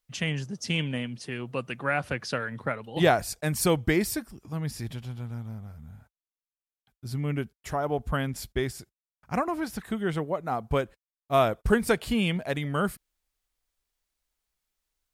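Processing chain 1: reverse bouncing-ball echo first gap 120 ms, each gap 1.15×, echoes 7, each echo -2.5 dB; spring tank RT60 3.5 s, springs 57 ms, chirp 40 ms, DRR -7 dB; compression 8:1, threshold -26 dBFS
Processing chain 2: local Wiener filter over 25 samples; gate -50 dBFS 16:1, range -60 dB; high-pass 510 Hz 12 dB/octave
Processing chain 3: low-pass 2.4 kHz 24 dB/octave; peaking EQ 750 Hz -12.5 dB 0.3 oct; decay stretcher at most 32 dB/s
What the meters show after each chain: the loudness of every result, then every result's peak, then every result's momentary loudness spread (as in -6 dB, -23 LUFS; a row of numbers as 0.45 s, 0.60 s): -29.5 LUFS, -32.5 LUFS, -28.5 LUFS; -15.0 dBFS, -7.5 dBFS, -8.5 dBFS; 4 LU, 17 LU, 13 LU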